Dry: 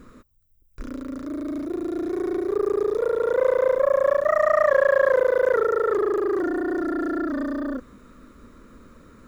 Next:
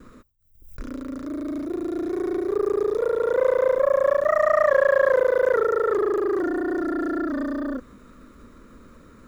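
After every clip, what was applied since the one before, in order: gate with hold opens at -41 dBFS; backwards sustainer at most 95 dB/s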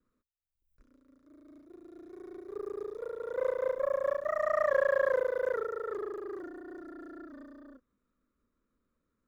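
upward expander 2.5:1, over -33 dBFS; gain -8 dB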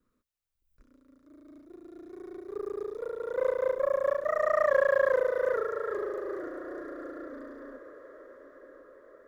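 diffused feedback echo 0.909 s, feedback 58%, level -15.5 dB; gain +3 dB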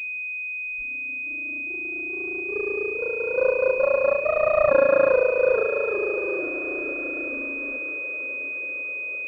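reverse delay 0.533 s, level -13.5 dB; pulse-width modulation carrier 2500 Hz; gain +7 dB

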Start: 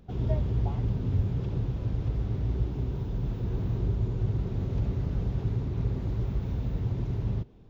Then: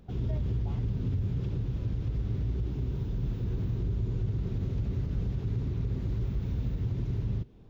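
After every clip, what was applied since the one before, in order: dynamic EQ 770 Hz, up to -7 dB, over -54 dBFS, Q 0.94; limiter -23 dBFS, peak gain reduction 7 dB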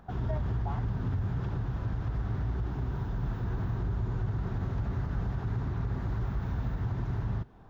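band shelf 1100 Hz +13.5 dB; gain -1 dB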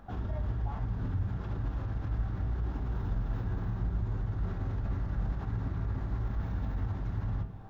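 vocal rider; limiter -30 dBFS, peak gain reduction 7.5 dB; on a send at -4 dB: reverb RT60 0.55 s, pre-delay 4 ms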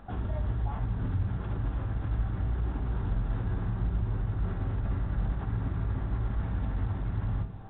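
gain +2.5 dB; A-law 64 kbps 8000 Hz

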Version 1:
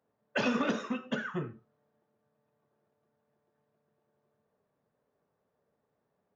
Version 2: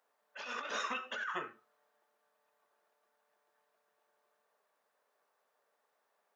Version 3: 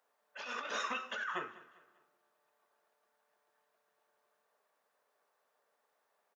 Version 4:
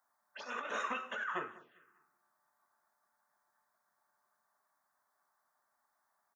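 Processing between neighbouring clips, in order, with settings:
HPF 910 Hz 12 dB/oct; negative-ratio compressor -43 dBFS, ratio -1; gain +3 dB
feedback echo 0.199 s, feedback 41%, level -19 dB; on a send at -22.5 dB: reverb RT60 1.6 s, pre-delay 87 ms
envelope phaser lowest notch 460 Hz, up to 4800 Hz, full sweep at -40 dBFS; gain +1.5 dB

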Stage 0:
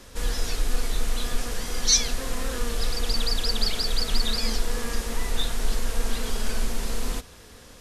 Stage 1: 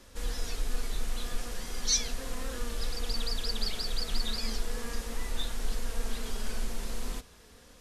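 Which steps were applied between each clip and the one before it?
flange 0.37 Hz, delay 3.3 ms, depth 2.6 ms, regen -64%; gain -3.5 dB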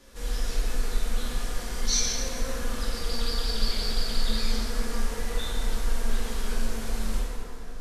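plate-style reverb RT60 3 s, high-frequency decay 0.45×, DRR -6 dB; gain -2 dB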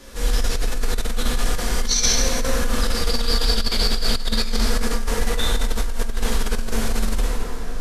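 negative-ratio compressor -26 dBFS, ratio -1; gain +8.5 dB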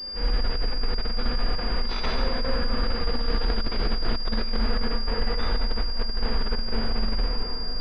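pulse-width modulation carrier 4800 Hz; gain -4.5 dB

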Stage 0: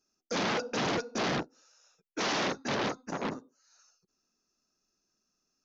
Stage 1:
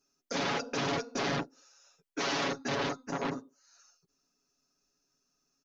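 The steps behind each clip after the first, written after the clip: comb 7.2 ms, depth 76%; limiter -24.5 dBFS, peak gain reduction 4.5 dB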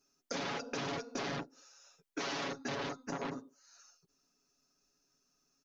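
compressor 5:1, threshold -37 dBFS, peak gain reduction 8 dB; gain +1 dB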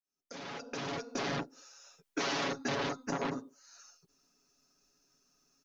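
opening faded in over 1.48 s; gain +4.5 dB

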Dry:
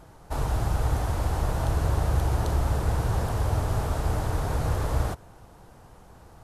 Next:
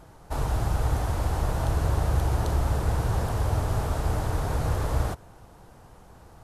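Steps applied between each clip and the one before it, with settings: nothing audible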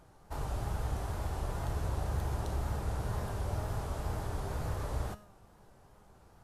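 resonator 200 Hz, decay 0.59 s, harmonics all, mix 70%; wow and flutter 73 cents

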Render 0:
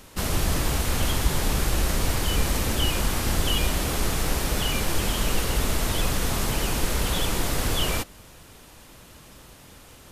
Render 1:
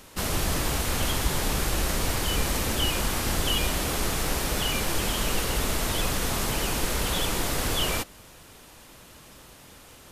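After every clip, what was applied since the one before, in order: low shelf 200 Hz -4.5 dB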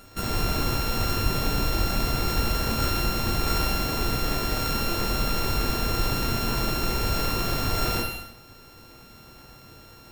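sample sorter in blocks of 32 samples; non-linear reverb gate 0.35 s falling, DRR 0.5 dB

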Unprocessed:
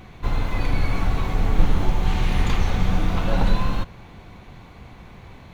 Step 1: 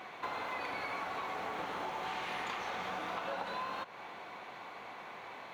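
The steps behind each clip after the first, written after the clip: HPF 670 Hz 12 dB/oct; high shelf 3200 Hz -11.5 dB; compressor 6:1, threshold -42 dBFS, peak gain reduction 14 dB; gain +5.5 dB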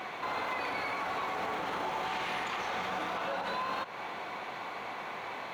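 limiter -33.5 dBFS, peak gain reduction 8 dB; gain +7.5 dB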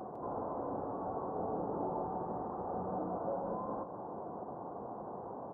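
Gaussian blur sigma 12 samples; echo 0.155 s -10 dB; gain +4.5 dB

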